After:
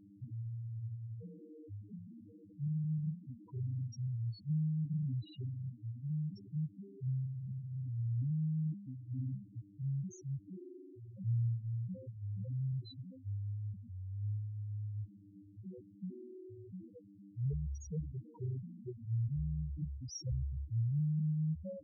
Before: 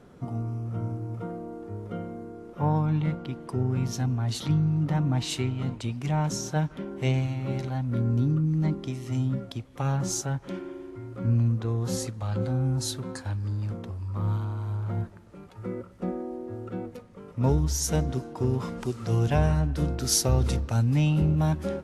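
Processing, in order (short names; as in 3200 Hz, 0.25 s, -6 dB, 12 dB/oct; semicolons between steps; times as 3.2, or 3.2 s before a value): buzz 100 Hz, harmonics 3, -44 dBFS 0 dB/oct; HPF 56 Hz 12 dB/oct; loudest bins only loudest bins 2; gain -9 dB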